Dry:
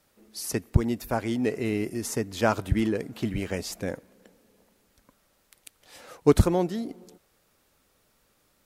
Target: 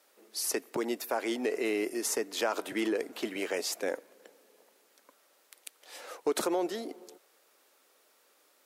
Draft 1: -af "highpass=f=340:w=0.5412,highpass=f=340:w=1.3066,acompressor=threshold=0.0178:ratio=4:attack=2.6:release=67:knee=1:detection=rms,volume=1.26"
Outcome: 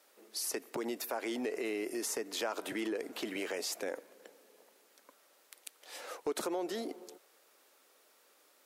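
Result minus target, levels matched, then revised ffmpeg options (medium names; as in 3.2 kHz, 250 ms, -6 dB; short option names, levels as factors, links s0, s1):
compression: peak gain reduction +6 dB
-af "highpass=f=340:w=0.5412,highpass=f=340:w=1.3066,acompressor=threshold=0.0447:ratio=4:attack=2.6:release=67:knee=1:detection=rms,volume=1.26"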